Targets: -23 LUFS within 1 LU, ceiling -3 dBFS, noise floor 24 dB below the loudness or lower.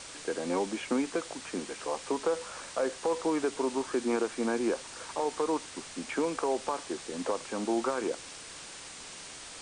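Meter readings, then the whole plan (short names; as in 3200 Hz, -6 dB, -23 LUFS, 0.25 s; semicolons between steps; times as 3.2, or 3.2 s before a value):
noise floor -46 dBFS; noise floor target -57 dBFS; loudness -33.0 LUFS; peak -19.0 dBFS; loudness target -23.0 LUFS
-> noise print and reduce 11 dB; gain +10 dB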